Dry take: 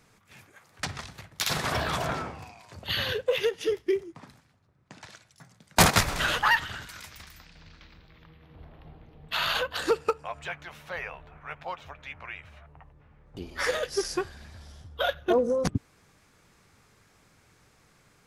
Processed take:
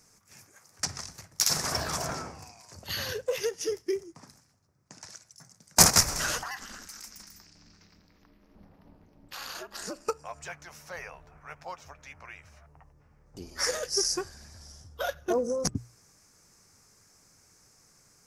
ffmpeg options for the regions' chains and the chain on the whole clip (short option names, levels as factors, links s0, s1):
-filter_complex "[0:a]asettb=1/sr,asplit=3[s0][s1][s2];[s0]atrim=end=6.434[s3];[s1]atrim=start=6.43:end=10.08,asetpts=PTS-STARTPTS,afade=t=in:d=0.004:c=qsin,afade=t=out:st=3.646:d=0.004:c=qsin,acompressor=threshold=0.0282:ratio=2.5:attack=3.2:release=140:knee=1:detection=peak,aeval=exprs='val(0)*sin(2*PI*130*n/s)':c=same[s4];[s2]atrim=start=10.076[s5];[s3][s4]acrossfade=d=0.004:c1=hsin:c2=qsin[s6];[s6][s5]acrossfade=d=0.004:c1=qsin:c2=hsin,highshelf=f=4400:t=q:w=3:g=8,bandreject=f=60:t=h:w=6,bandreject=f=120:t=h:w=6,volume=0.631"